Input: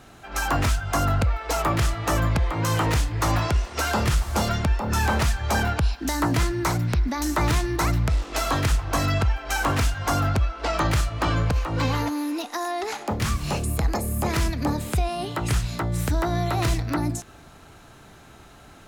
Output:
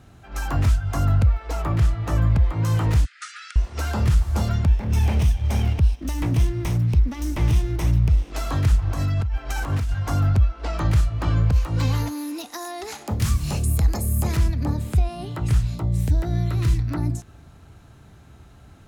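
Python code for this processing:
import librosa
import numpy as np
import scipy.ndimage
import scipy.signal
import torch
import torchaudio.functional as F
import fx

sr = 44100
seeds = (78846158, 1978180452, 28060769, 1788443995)

y = fx.high_shelf(x, sr, hz=4500.0, db=-5.5, at=(1.48, 2.44))
y = fx.brickwall_bandpass(y, sr, low_hz=1200.0, high_hz=10000.0, at=(3.05, 3.56))
y = fx.lower_of_two(y, sr, delay_ms=0.34, at=(4.67, 8.31))
y = fx.over_compress(y, sr, threshold_db=-25.0, ratio=-1.0, at=(8.82, 10.0))
y = fx.high_shelf(y, sr, hz=4000.0, db=11.0, at=(11.52, 14.36))
y = fx.peak_eq(y, sr, hz=fx.line((15.74, 1800.0), (16.9, 550.0)), db=-14.0, octaves=0.51, at=(15.74, 16.9), fade=0.02)
y = fx.peak_eq(y, sr, hz=79.0, db=14.0, octaves=2.8)
y = F.gain(torch.from_numpy(y), -7.5).numpy()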